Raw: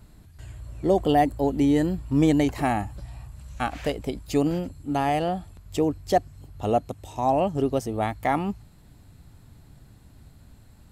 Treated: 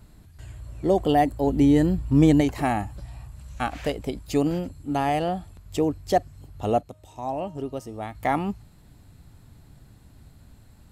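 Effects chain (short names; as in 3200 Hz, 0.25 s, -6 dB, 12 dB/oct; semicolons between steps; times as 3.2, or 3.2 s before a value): 1.47–2.41 low shelf 240 Hz +6.5 dB; 6.81–8.15 resonator 310 Hz, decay 0.84 s, mix 60%; reverb, pre-delay 45 ms, DRR 33.5 dB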